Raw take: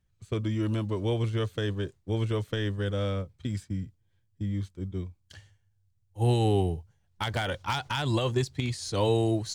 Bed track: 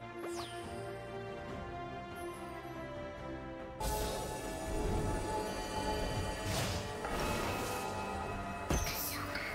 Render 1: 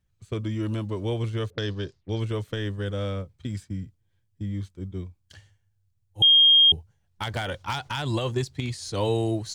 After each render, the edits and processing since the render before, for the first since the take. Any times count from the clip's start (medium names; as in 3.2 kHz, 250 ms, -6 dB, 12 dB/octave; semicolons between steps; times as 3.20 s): 1.50–2.20 s: touch-sensitive low-pass 410–5000 Hz up, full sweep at -34 dBFS; 6.22–6.72 s: bleep 3.23 kHz -12.5 dBFS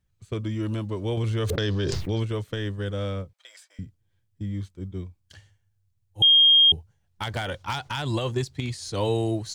1.17–2.23 s: level flattener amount 100%; 3.33–3.79 s: elliptic high-pass 580 Hz, stop band 60 dB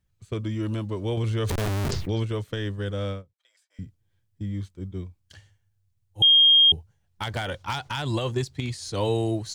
1.50–1.91 s: Schmitt trigger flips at -25 dBFS; 3.11–3.82 s: dip -16 dB, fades 0.12 s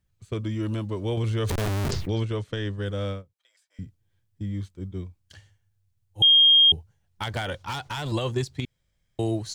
2.21–2.83 s: low-pass 8.4 kHz; 7.67–8.12 s: hard clipper -27 dBFS; 8.65–9.19 s: room tone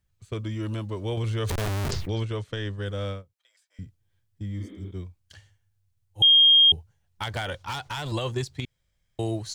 4.63–4.88 s: spectral replace 210–4400 Hz both; peaking EQ 240 Hz -4 dB 1.8 oct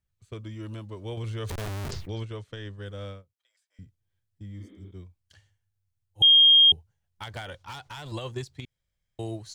upward expansion 1.5:1, over -31 dBFS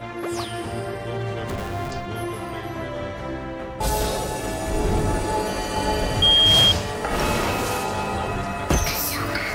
add bed track +13.5 dB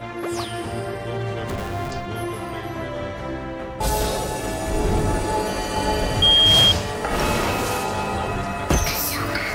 trim +1 dB